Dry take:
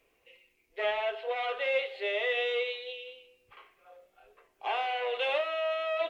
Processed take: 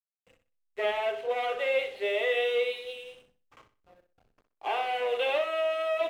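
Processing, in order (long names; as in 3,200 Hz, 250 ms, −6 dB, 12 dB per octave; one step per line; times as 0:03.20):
slack as between gear wheels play −48 dBFS
dynamic equaliser 260 Hz, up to +7 dB, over −48 dBFS, Q 0.73
flutter between parallel walls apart 10.7 metres, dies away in 0.33 s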